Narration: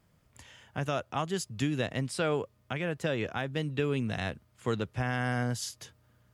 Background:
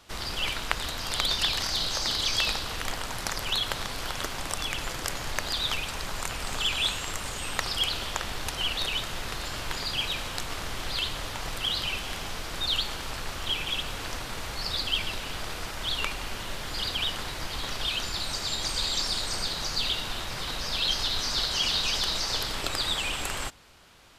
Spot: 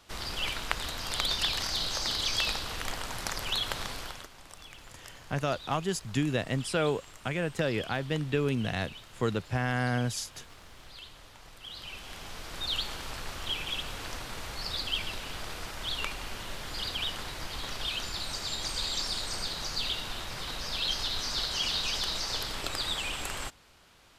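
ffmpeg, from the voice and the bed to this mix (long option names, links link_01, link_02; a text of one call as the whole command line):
ffmpeg -i stem1.wav -i stem2.wav -filter_complex "[0:a]adelay=4550,volume=1.5dB[link_01];[1:a]volume=10.5dB,afade=type=out:start_time=3.89:duration=0.39:silence=0.188365,afade=type=in:start_time=11.6:duration=1.22:silence=0.211349[link_02];[link_01][link_02]amix=inputs=2:normalize=0" out.wav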